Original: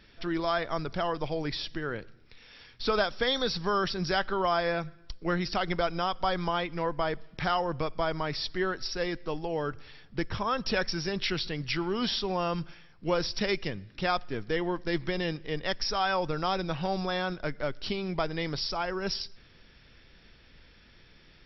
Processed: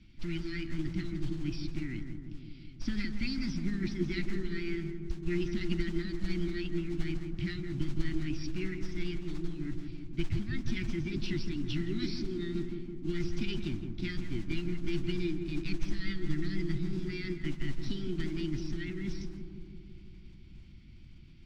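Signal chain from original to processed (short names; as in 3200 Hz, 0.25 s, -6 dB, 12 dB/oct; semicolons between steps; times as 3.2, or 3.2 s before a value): Chebyshev band-stop 350–1400 Hz, order 5; low shelf 170 Hz +12 dB; formant shift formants +5 st; modulation noise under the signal 19 dB; air absorption 130 m; darkening echo 0.166 s, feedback 74%, low-pass 1100 Hz, level -5.5 dB; gain -6 dB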